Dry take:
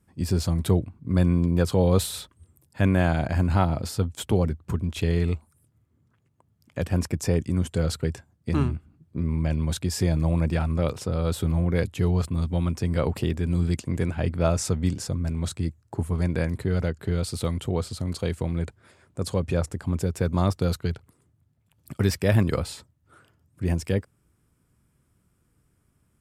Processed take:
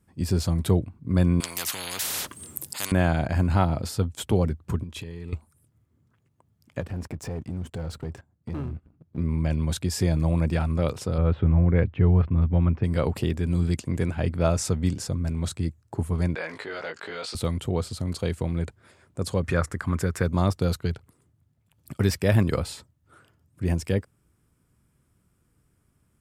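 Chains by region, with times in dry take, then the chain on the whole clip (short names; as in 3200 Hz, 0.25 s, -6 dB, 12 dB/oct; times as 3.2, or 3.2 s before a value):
1.4–2.92 HPF 130 Hz + high shelf 3100 Hz +10.5 dB + spectral compressor 10:1
4.83–5.33 compressor 16:1, threshold -31 dBFS + notch comb 710 Hz
6.8–9.18 high shelf 2300 Hz -10 dB + sample leveller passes 2 + compressor 2:1, threshold -40 dBFS
11.18–12.84 LPF 2500 Hz 24 dB/oct + low shelf 120 Hz +7.5 dB
16.35–17.35 BPF 750–4300 Hz + doubler 19 ms -3.5 dB + fast leveller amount 50%
19.44–20.23 band shelf 1500 Hz +10 dB 1.2 oct + mismatched tape noise reduction encoder only
whole clip: dry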